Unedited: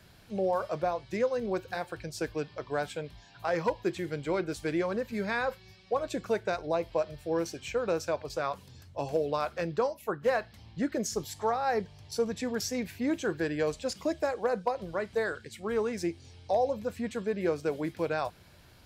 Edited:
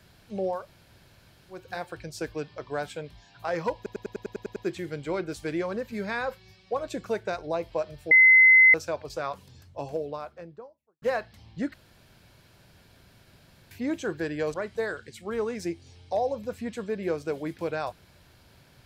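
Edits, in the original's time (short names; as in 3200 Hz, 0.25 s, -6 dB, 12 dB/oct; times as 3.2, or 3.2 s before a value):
0.59–1.6 room tone, crossfade 0.24 s
3.76 stutter 0.10 s, 9 plays
7.31–7.94 bleep 2050 Hz -12 dBFS
8.66–10.22 studio fade out
10.94–12.91 room tone
13.74–14.92 cut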